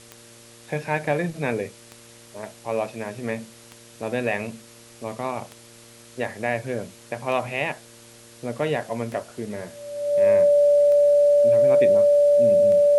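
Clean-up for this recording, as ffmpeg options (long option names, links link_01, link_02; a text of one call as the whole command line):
ffmpeg -i in.wav -af "adeclick=threshold=4,bandreject=frequency=116.7:width_type=h:width=4,bandreject=frequency=233.4:width_type=h:width=4,bandreject=frequency=350.1:width_type=h:width=4,bandreject=frequency=466.8:width_type=h:width=4,bandreject=frequency=583.5:width_type=h:width=4,bandreject=frequency=580:width=30,afwtdn=0.0045" out.wav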